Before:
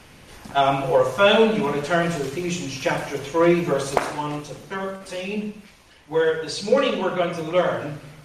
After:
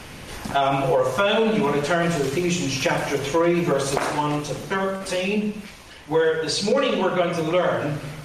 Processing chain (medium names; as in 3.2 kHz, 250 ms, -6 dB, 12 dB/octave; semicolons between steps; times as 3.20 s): peak limiter -12 dBFS, peak gain reduction 7.5 dB; compression 2:1, threshold -31 dBFS, peak gain reduction 8.5 dB; trim +8.5 dB